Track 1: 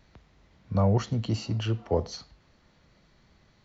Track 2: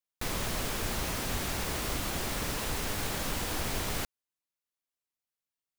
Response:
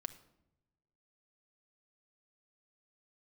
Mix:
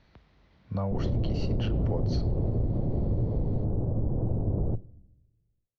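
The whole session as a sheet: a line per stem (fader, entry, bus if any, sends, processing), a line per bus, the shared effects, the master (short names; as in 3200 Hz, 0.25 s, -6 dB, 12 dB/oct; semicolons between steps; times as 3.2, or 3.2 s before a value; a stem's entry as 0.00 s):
-1.5 dB, 0.00 s, no send, LPF 5000 Hz 24 dB/oct; compressor, threshold -25 dBFS, peak gain reduction 7 dB
+3.0 dB, 0.70 s, send -6 dB, octaver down 1 oct, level +4 dB; inverse Chebyshev low-pass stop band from 2600 Hz, stop band 70 dB; bell 110 Hz +8 dB 0.36 oct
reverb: on, pre-delay 5 ms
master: limiter -20 dBFS, peak gain reduction 7 dB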